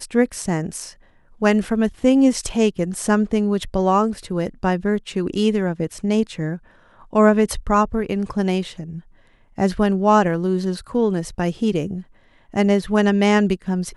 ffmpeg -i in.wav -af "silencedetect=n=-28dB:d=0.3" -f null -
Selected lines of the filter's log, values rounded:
silence_start: 0.89
silence_end: 1.42 | silence_duration: 0.53
silence_start: 6.56
silence_end: 7.13 | silence_duration: 0.57
silence_start: 8.99
silence_end: 9.58 | silence_duration: 0.60
silence_start: 12.00
silence_end: 12.54 | silence_duration: 0.53